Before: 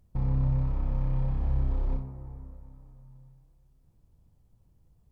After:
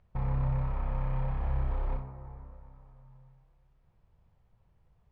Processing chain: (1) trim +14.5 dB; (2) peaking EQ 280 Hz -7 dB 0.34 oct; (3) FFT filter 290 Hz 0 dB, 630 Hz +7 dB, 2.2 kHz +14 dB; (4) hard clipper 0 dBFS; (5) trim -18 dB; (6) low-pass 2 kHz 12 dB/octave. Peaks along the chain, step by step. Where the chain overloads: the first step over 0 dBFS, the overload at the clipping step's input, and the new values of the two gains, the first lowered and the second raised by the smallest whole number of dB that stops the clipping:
-2.5 dBFS, -2.5 dBFS, -2.0 dBFS, -2.0 dBFS, -20.0 dBFS, -20.0 dBFS; nothing clips

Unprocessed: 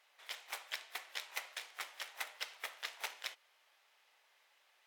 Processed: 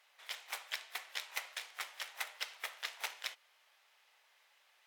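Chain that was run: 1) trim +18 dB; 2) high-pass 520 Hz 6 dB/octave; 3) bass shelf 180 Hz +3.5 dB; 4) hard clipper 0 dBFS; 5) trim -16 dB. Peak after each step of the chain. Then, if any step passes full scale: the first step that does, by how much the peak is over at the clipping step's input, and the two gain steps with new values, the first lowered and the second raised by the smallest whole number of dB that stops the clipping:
-2.5 dBFS, -3.0 dBFS, -3.0 dBFS, -3.0 dBFS, -19.0 dBFS; nothing clips

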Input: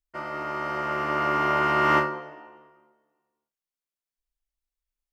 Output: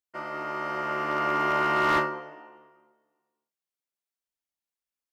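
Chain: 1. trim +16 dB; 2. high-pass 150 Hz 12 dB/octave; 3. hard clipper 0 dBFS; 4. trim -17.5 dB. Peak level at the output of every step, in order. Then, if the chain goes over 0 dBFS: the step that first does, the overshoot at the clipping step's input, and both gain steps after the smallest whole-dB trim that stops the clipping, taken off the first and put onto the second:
+7.0 dBFS, +8.0 dBFS, 0.0 dBFS, -17.5 dBFS; step 1, 8.0 dB; step 1 +8 dB, step 4 -9.5 dB

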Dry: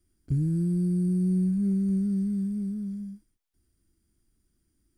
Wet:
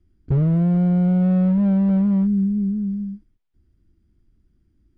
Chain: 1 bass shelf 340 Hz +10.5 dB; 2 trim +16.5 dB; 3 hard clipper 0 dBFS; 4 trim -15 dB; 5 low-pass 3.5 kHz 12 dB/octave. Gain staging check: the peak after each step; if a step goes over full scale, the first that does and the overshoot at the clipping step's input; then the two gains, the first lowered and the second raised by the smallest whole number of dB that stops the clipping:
-9.0 dBFS, +7.5 dBFS, 0.0 dBFS, -15.0 dBFS, -15.0 dBFS; step 2, 7.5 dB; step 2 +8.5 dB, step 4 -7 dB

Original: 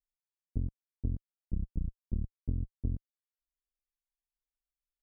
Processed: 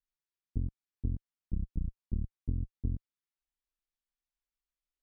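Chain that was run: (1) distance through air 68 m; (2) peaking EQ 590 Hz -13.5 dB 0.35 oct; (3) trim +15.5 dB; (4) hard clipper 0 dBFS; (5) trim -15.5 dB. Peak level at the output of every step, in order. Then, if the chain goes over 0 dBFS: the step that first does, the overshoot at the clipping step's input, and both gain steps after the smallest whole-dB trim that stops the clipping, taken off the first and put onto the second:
-19.5 dBFS, -19.5 dBFS, -4.0 dBFS, -4.0 dBFS, -19.5 dBFS; nothing clips

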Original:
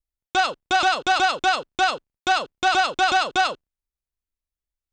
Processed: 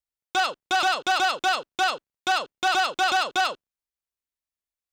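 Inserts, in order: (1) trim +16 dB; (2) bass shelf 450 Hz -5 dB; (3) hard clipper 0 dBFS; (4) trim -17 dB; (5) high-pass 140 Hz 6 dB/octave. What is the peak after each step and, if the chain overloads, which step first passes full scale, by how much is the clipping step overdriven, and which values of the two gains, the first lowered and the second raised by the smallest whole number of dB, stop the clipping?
+6.5 dBFS, +6.0 dBFS, 0.0 dBFS, -17.0 dBFS, -15.0 dBFS; step 1, 6.0 dB; step 1 +10 dB, step 4 -11 dB

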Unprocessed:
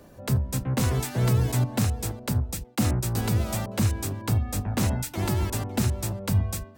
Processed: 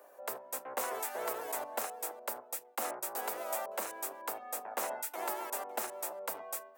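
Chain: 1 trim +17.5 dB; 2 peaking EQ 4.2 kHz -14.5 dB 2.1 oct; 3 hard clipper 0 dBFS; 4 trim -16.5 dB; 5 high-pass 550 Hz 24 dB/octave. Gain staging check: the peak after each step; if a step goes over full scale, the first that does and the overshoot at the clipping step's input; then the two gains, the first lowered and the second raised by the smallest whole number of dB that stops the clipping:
+3.5 dBFS, +3.5 dBFS, 0.0 dBFS, -16.5 dBFS, -21.0 dBFS; step 1, 3.5 dB; step 1 +13.5 dB, step 4 -12.5 dB

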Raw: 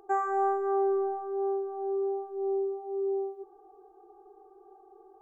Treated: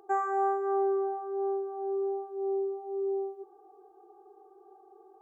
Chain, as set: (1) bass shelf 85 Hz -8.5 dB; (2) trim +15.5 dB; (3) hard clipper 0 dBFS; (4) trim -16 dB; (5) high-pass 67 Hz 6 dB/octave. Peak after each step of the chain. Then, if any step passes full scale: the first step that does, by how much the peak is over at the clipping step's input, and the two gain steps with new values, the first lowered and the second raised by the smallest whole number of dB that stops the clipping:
-18.5 dBFS, -3.0 dBFS, -3.0 dBFS, -19.0 dBFS, -19.5 dBFS; nothing clips

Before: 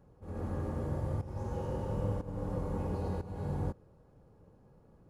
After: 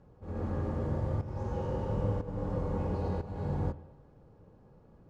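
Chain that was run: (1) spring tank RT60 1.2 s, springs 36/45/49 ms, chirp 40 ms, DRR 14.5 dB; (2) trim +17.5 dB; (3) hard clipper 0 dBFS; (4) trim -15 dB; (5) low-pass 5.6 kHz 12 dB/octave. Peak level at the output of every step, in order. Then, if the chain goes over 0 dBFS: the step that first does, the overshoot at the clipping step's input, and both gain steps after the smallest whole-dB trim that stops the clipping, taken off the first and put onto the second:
-22.5 dBFS, -5.0 dBFS, -5.0 dBFS, -20.0 dBFS, -20.0 dBFS; nothing clips

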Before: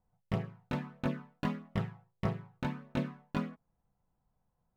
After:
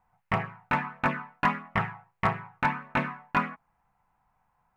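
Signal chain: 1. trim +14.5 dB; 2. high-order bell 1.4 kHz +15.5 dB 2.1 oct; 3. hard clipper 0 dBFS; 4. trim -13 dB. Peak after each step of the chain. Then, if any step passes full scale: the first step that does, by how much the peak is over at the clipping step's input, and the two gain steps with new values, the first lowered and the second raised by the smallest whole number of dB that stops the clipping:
-4.5 dBFS, +3.5 dBFS, 0.0 dBFS, -13.0 dBFS; step 2, 3.5 dB; step 1 +10.5 dB, step 4 -9 dB

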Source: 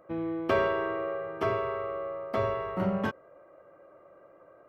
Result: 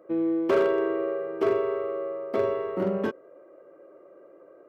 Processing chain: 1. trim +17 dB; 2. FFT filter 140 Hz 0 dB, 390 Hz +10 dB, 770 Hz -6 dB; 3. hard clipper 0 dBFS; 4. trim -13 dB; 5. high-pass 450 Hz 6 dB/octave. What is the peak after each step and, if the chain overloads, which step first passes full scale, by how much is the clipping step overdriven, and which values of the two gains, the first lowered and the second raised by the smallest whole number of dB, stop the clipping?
+5.0 dBFS, +8.5 dBFS, 0.0 dBFS, -13.0 dBFS, -11.0 dBFS; step 1, 8.5 dB; step 1 +8 dB, step 4 -4 dB

